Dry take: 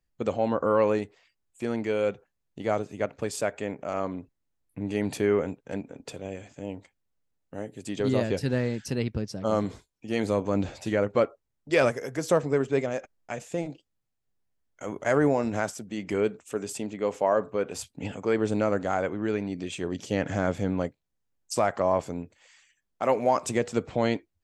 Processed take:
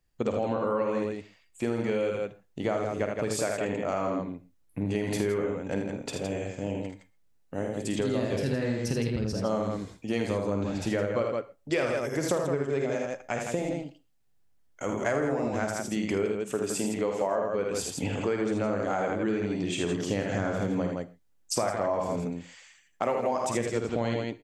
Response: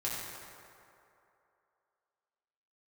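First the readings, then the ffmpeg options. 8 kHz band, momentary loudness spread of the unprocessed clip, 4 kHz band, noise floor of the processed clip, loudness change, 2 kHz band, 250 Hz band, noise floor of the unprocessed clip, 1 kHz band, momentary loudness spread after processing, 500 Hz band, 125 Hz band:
+3.0 dB, 14 LU, +1.5 dB, −64 dBFS, −1.5 dB, −1.0 dB, −0.5 dB, −79 dBFS, −2.5 dB, 7 LU, −2.0 dB, 0.0 dB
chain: -filter_complex "[0:a]aecho=1:1:51|79|164:0.473|0.562|0.473,acompressor=threshold=-29dB:ratio=6,asplit=2[link_01][link_02];[1:a]atrim=start_sample=2205,afade=type=out:start_time=0.14:duration=0.01,atrim=end_sample=6615,adelay=43[link_03];[link_02][link_03]afir=irnorm=-1:irlink=0,volume=-19dB[link_04];[link_01][link_04]amix=inputs=2:normalize=0,volume=4dB"

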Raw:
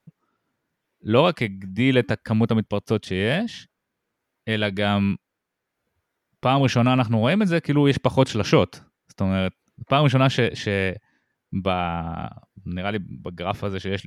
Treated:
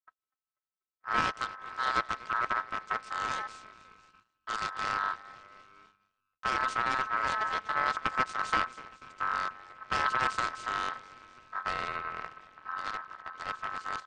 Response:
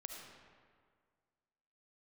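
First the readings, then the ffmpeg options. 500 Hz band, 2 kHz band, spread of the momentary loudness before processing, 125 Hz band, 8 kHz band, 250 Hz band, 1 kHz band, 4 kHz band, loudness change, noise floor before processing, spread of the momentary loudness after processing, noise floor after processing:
−21.0 dB, −4.0 dB, 13 LU, −29.0 dB, −6.5 dB, −26.5 dB, −2.0 dB, −11.5 dB, −10.0 dB, −81 dBFS, 15 LU, below −85 dBFS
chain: -filter_complex "[0:a]equalizer=frequency=85:width_type=o:width=0.47:gain=9.5,asplit=6[link_01][link_02][link_03][link_04][link_05][link_06];[link_02]adelay=244,afreqshift=100,volume=-19dB[link_07];[link_03]adelay=488,afreqshift=200,volume=-23.3dB[link_08];[link_04]adelay=732,afreqshift=300,volume=-27.6dB[link_09];[link_05]adelay=976,afreqshift=400,volume=-31.9dB[link_10];[link_06]adelay=1220,afreqshift=500,volume=-36.2dB[link_11];[link_01][link_07][link_08][link_09][link_10][link_11]amix=inputs=6:normalize=0,tremolo=f=240:d=0.824,aresample=16000,aeval=exprs='abs(val(0))':channel_layout=same,aresample=44100,agate=range=-16dB:threshold=-51dB:ratio=16:detection=peak,aeval=exprs='val(0)*sin(2*PI*1300*n/s)':channel_layout=same,volume=-5.5dB"

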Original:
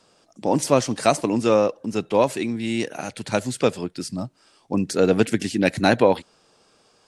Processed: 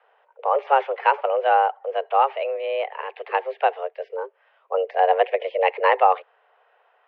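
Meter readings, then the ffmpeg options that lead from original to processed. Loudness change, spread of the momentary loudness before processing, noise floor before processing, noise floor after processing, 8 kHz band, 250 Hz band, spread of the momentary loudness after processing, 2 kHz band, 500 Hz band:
0.0 dB, 11 LU, −60 dBFS, −63 dBFS, below −40 dB, below −25 dB, 12 LU, +1.0 dB, −1.5 dB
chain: -af "highpass=frequency=150:width_type=q:width=0.5412,highpass=frequency=150:width_type=q:width=1.307,lowpass=frequency=2500:width_type=q:width=0.5176,lowpass=frequency=2500:width_type=q:width=0.7071,lowpass=frequency=2500:width_type=q:width=1.932,afreqshift=270"

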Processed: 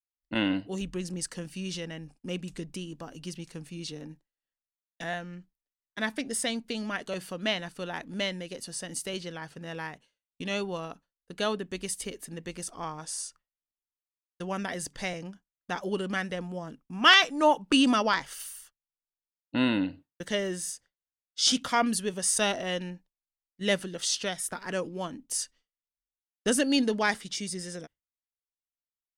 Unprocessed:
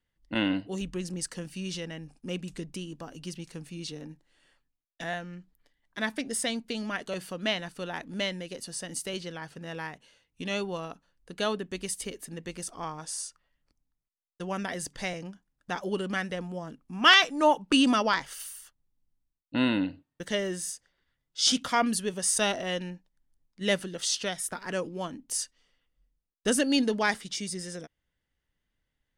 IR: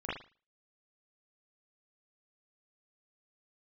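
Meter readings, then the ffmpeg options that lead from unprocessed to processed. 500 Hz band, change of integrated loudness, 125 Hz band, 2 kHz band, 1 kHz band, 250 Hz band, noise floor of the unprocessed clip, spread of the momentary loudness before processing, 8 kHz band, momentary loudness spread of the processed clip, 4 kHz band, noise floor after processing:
0.0 dB, 0.0 dB, 0.0 dB, 0.0 dB, 0.0 dB, 0.0 dB, −84 dBFS, 17 LU, 0.0 dB, 17 LU, 0.0 dB, below −85 dBFS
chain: -af "agate=range=-33dB:threshold=-46dB:ratio=3:detection=peak"

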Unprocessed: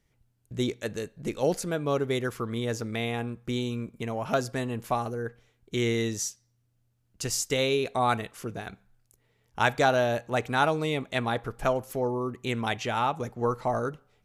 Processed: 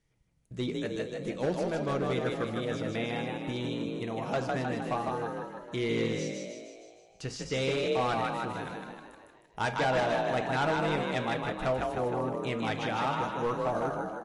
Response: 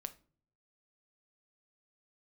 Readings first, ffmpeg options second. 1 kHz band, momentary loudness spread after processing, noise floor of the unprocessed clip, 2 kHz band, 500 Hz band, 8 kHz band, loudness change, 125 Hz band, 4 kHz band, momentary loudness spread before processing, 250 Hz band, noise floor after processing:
−2.0 dB, 11 LU, −71 dBFS, −2.5 dB, −2.0 dB, −11.5 dB, −2.5 dB, −3.0 dB, −3.5 dB, 10 LU, −1.5 dB, −60 dBFS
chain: -filter_complex "[0:a]acrossover=split=4500[link_01][link_02];[link_02]acompressor=threshold=-55dB:ratio=6[link_03];[link_01][link_03]amix=inputs=2:normalize=0,asplit=9[link_04][link_05][link_06][link_07][link_08][link_09][link_10][link_11][link_12];[link_05]adelay=155,afreqshift=41,volume=-3.5dB[link_13];[link_06]adelay=310,afreqshift=82,volume=-8.2dB[link_14];[link_07]adelay=465,afreqshift=123,volume=-13dB[link_15];[link_08]adelay=620,afreqshift=164,volume=-17.7dB[link_16];[link_09]adelay=775,afreqshift=205,volume=-22.4dB[link_17];[link_10]adelay=930,afreqshift=246,volume=-27.2dB[link_18];[link_11]adelay=1085,afreqshift=287,volume=-31.9dB[link_19];[link_12]adelay=1240,afreqshift=328,volume=-36.6dB[link_20];[link_04][link_13][link_14][link_15][link_16][link_17][link_18][link_19][link_20]amix=inputs=9:normalize=0,asoftclip=type=hard:threshold=-20dB[link_21];[1:a]atrim=start_sample=2205[link_22];[link_21][link_22]afir=irnorm=-1:irlink=0" -ar 32000 -c:a libmp3lame -b:a 48k

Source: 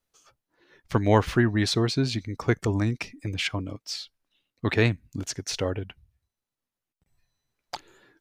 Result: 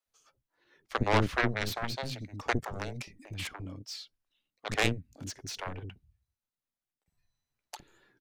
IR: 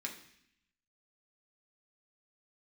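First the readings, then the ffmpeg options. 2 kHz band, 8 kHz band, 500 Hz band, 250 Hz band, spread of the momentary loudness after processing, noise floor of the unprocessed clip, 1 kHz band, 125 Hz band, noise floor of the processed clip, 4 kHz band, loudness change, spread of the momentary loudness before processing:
−2.5 dB, −6.5 dB, −8.0 dB, −10.5 dB, 19 LU, below −85 dBFS, −2.0 dB, −10.0 dB, below −85 dBFS, −6.5 dB, −7.0 dB, 17 LU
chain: -filter_complex "[0:a]aeval=exprs='0.596*(cos(1*acos(clip(val(0)/0.596,-1,1)))-cos(1*PI/2))+0.0841*(cos(5*acos(clip(val(0)/0.596,-1,1)))-cos(5*PI/2))+0.188*(cos(7*acos(clip(val(0)/0.596,-1,1)))-cos(7*PI/2))':channel_layout=same,acontrast=73,acrossover=split=400[link_01][link_02];[link_01]adelay=60[link_03];[link_03][link_02]amix=inputs=2:normalize=0,volume=-7.5dB"

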